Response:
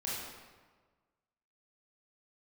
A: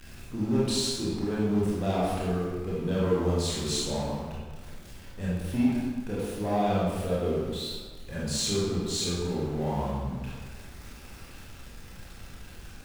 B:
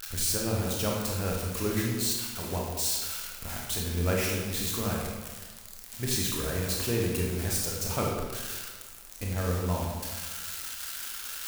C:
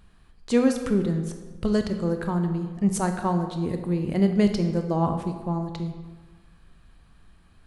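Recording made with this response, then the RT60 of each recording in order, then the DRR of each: A; 1.4 s, 1.4 s, 1.4 s; -7.0 dB, -2.5 dB, 6.0 dB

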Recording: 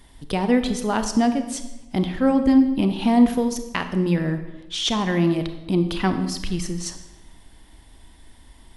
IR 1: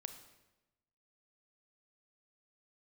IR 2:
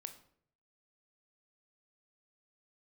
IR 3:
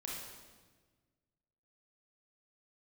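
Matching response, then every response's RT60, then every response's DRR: 1; 1.0 s, 0.60 s, 1.4 s; 8.0 dB, 7.5 dB, -4.0 dB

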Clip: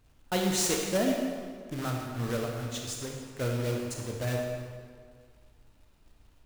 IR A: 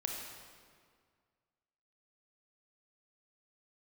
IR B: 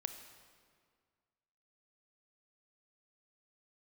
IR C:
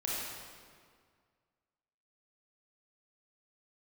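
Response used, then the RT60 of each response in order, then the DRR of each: A; 1.9 s, 1.9 s, 1.9 s; 0.5 dB, 7.5 dB, -6.0 dB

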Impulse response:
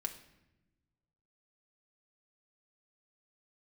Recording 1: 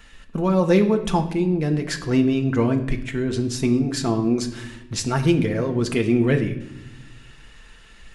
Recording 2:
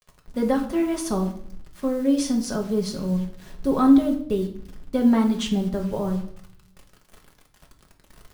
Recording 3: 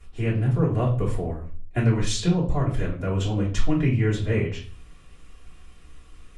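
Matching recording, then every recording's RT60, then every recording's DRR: 1; 0.95 s, 0.60 s, 0.40 s; 3.5 dB, 1.5 dB, -8.0 dB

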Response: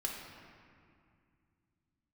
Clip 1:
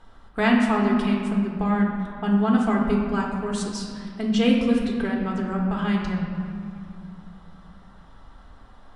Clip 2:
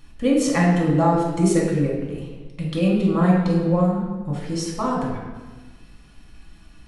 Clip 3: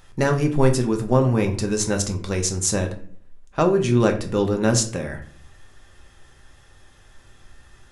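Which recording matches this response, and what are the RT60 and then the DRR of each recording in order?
1; 2.3 s, 1.3 s, no single decay rate; -2.0 dB, -3.5 dB, 4.0 dB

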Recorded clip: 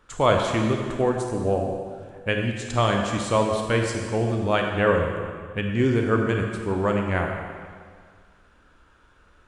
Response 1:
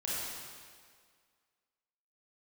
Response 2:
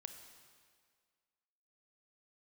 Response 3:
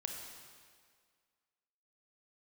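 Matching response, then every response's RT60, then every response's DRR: 3; 1.9 s, 1.9 s, 1.9 s; -7.5 dB, 6.5 dB, 2.0 dB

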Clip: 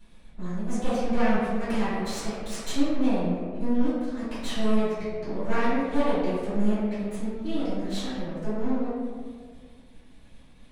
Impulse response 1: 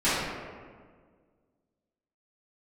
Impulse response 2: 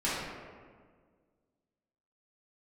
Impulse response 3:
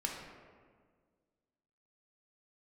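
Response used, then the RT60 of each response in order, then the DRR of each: 1; 1.7 s, 1.7 s, 1.7 s; -16.0 dB, -10.5 dB, -1.0 dB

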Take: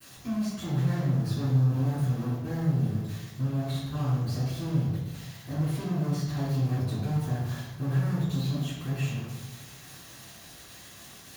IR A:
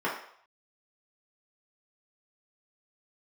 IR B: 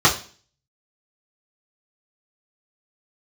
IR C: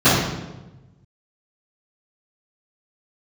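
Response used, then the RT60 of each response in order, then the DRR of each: C; 0.65 s, 0.40 s, 1.1 s; -6.0 dB, -7.0 dB, -18.5 dB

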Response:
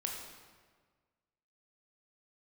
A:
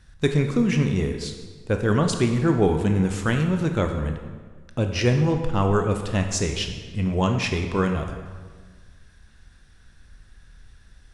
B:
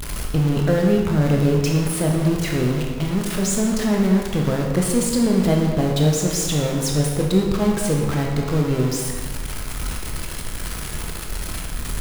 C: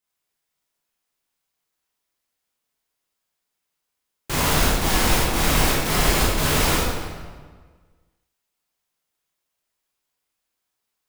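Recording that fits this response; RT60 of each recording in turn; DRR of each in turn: B; 1.6 s, 1.6 s, 1.6 s; 4.5 dB, -0.5 dB, -7.5 dB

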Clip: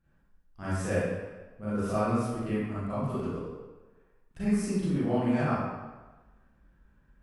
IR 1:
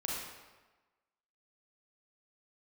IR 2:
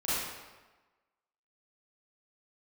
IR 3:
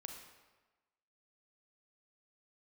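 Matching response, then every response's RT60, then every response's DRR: 2; 1.2 s, 1.2 s, 1.2 s; -4.5 dB, -12.5 dB, 2.5 dB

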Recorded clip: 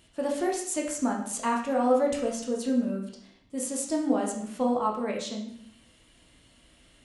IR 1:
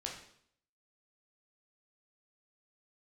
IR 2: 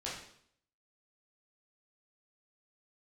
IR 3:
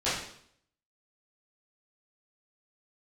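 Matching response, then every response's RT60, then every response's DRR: 1; 0.65 s, 0.65 s, 0.65 s; -1.0 dB, -7.0 dB, -13.5 dB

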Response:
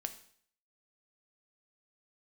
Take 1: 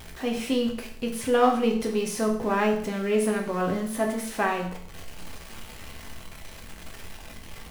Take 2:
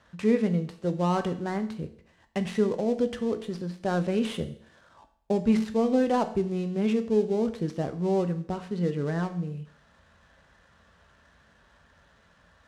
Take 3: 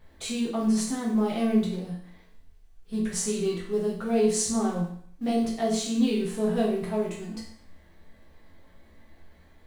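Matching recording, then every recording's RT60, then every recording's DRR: 2; 0.55 s, 0.60 s, 0.55 s; 0.5 dB, 8.0 dB, -4.5 dB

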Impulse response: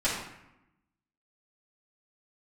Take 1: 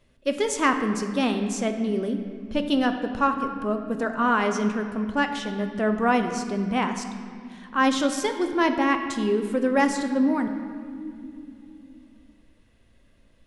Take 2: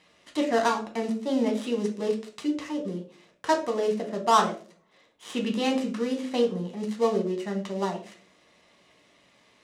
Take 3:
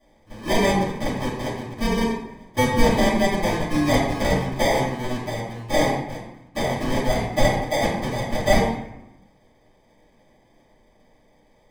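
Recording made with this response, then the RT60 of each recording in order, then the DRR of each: 3; no single decay rate, no single decay rate, 0.85 s; 6.0 dB, 1.5 dB, -11.0 dB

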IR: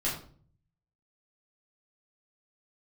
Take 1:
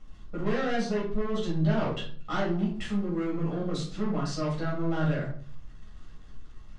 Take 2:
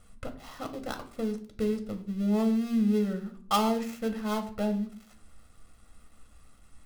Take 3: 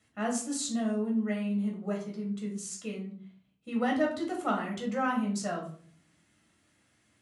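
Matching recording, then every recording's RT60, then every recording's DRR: 1; 0.45 s, 0.50 s, 0.45 s; -7.0 dB, 6.5 dB, -1.5 dB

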